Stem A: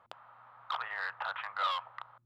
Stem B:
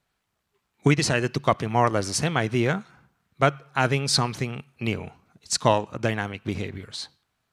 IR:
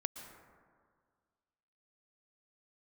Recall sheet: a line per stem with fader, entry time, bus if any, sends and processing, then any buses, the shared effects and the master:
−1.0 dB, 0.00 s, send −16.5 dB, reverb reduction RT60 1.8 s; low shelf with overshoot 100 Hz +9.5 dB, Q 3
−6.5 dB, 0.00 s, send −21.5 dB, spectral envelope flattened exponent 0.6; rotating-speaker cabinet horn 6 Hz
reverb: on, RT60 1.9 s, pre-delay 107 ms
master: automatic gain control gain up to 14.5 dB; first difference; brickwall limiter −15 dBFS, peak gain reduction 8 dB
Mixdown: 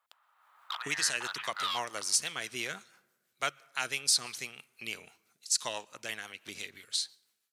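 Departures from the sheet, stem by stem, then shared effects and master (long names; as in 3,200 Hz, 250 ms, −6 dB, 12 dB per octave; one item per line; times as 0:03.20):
stem A: missing reverb reduction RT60 1.8 s
stem B: missing spectral envelope flattened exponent 0.6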